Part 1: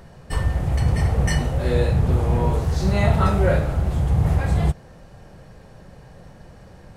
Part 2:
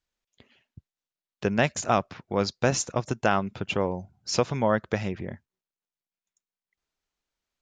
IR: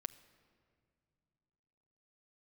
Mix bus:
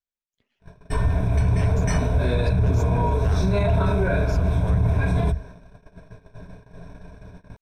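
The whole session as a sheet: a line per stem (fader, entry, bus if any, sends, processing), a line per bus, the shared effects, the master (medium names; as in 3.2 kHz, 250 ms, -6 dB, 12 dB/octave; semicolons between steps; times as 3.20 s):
+1.0 dB, 0.60 s, no send, rippled EQ curve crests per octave 1.6, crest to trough 15 dB; gate -39 dBFS, range -29 dB; treble shelf 5.9 kHz -12 dB
-11.5 dB, 0.00 s, no send, partial rectifier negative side -7 dB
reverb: none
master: peak limiter -12.5 dBFS, peak gain reduction 10.5 dB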